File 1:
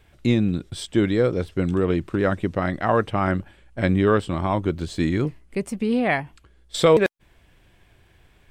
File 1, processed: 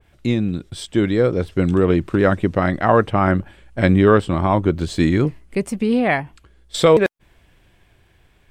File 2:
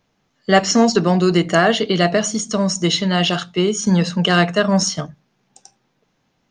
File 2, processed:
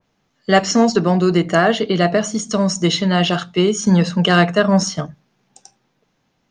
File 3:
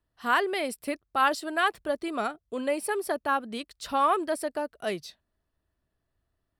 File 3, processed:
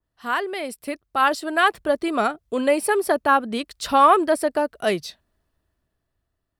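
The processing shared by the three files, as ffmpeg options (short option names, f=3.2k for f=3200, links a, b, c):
-af "dynaudnorm=f=240:g=11:m=10dB,adynamicequalizer=threshold=0.0282:dfrequency=2200:dqfactor=0.7:tfrequency=2200:tqfactor=0.7:attack=5:release=100:ratio=0.375:range=3:mode=cutabove:tftype=highshelf"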